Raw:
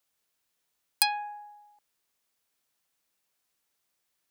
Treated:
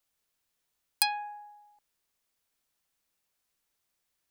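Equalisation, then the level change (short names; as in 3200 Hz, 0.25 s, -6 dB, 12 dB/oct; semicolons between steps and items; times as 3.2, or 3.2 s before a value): low shelf 78 Hz +10 dB; -2.0 dB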